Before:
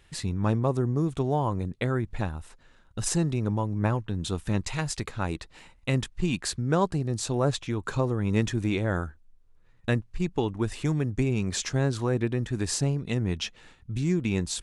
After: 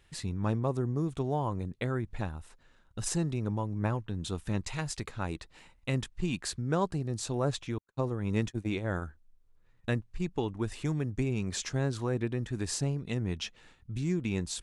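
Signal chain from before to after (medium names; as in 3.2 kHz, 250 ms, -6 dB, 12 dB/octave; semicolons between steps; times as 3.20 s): 7.78–9.02 s: gate -26 dBFS, range -53 dB; trim -5 dB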